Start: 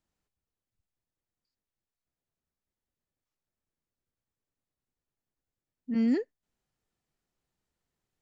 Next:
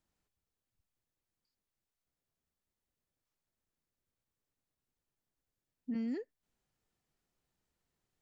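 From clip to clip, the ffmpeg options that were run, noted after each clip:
-af "acompressor=threshold=0.0178:ratio=6"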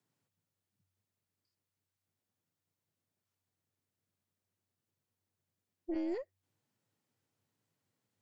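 -af "afreqshift=94,aeval=exprs='0.0335*(cos(1*acos(clip(val(0)/0.0335,-1,1)))-cos(1*PI/2))+0.00668*(cos(2*acos(clip(val(0)/0.0335,-1,1)))-cos(2*PI/2))':c=same"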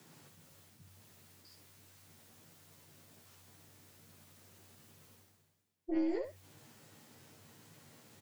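-af "areverse,acompressor=mode=upward:threshold=0.00794:ratio=2.5,areverse,aecho=1:1:13|68:0.668|0.473"

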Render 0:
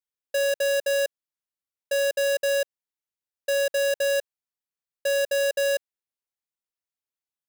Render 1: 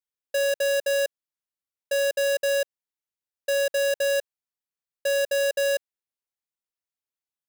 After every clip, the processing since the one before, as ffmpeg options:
-af anull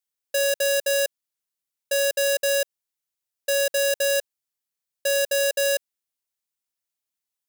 -af "highshelf=f=3300:g=8"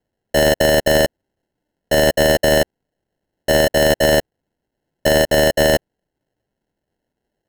-af "acrusher=samples=37:mix=1:aa=0.000001,volume=2.51"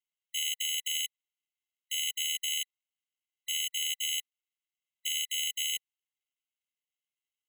-af "afftfilt=real='re*eq(mod(floor(b*sr/1024/2000),2),1)':imag='im*eq(mod(floor(b*sr/1024/2000),2),1)':win_size=1024:overlap=0.75,volume=0.531"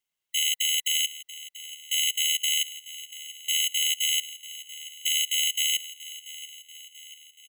-af "aecho=1:1:686|1372|2058|2744|3430:0.158|0.0856|0.0462|0.025|0.0135,volume=2.24"

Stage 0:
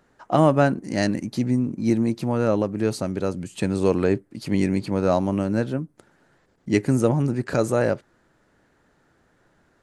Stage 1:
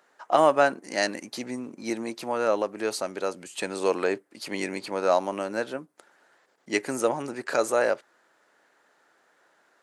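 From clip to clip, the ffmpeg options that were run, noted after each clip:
-af "highpass=570,volume=1.26"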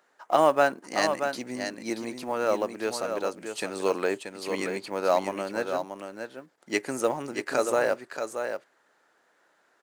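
-filter_complex "[0:a]asplit=2[s0][s1];[s1]aeval=exprs='sgn(val(0))*max(abs(val(0))-0.0188,0)':c=same,volume=0.251[s2];[s0][s2]amix=inputs=2:normalize=0,acrusher=bits=8:mode=log:mix=0:aa=0.000001,aecho=1:1:631:0.447,volume=0.708"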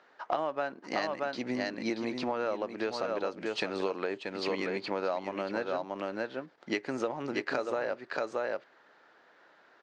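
-af "lowpass=f=4800:w=0.5412,lowpass=f=4800:w=1.3066,acompressor=threshold=0.02:ratio=10,volume=1.88"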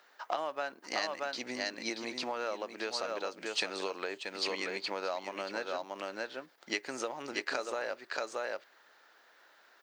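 -af "aemphasis=mode=production:type=riaa,volume=0.75"

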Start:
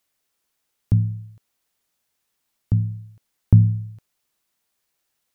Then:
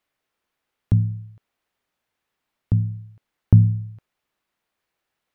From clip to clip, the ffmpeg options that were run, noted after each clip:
-af "bass=f=250:g=-2,treble=f=4000:g=-14,volume=1.26"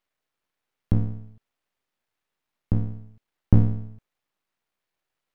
-af "aeval=exprs='max(val(0),0)':c=same"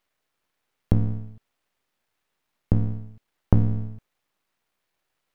-af "acompressor=threshold=0.0891:ratio=2.5,volume=1.88"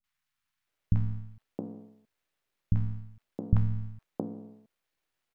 -filter_complex "[0:a]acrossover=split=230|910[s0][s1][s2];[s2]adelay=40[s3];[s1]adelay=670[s4];[s0][s4][s3]amix=inputs=3:normalize=0,volume=0.562"

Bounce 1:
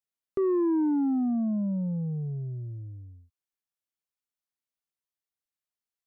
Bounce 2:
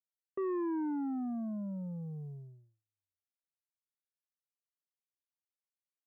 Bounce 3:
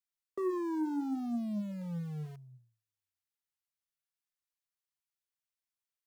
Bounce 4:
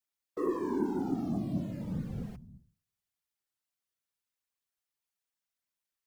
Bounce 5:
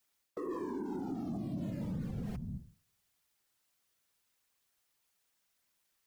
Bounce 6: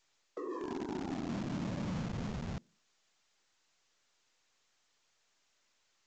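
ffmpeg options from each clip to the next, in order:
-af "agate=range=0.00398:threshold=0.02:ratio=16:detection=peak,tiltshelf=f=1100:g=-8,volume=0.708"
-filter_complex "[0:a]flanger=delay=3.9:depth=9.4:regen=65:speed=0.7:shape=sinusoidal,acrossover=split=160|820[s0][s1][s2];[s1]aeval=exprs='val(0)*gte(abs(val(0)),0.00178)':c=same[s3];[s0][s3][s2]amix=inputs=3:normalize=0,volume=1.78"
-af "afftfilt=real='hypot(re,im)*cos(2*PI*random(0))':imag='hypot(re,im)*sin(2*PI*random(1))':win_size=512:overlap=0.75,volume=2.51"
-af "areverse,acompressor=threshold=0.0112:ratio=6,areverse,alimiter=level_in=8.41:limit=0.0631:level=0:latency=1:release=161,volume=0.119,volume=3.76"
-filter_complex "[0:a]acrossover=split=250[s0][s1];[s0]acrusher=bits=6:mix=0:aa=0.000001[s2];[s2][s1]amix=inputs=2:normalize=0" -ar 16000 -c:a pcm_mulaw

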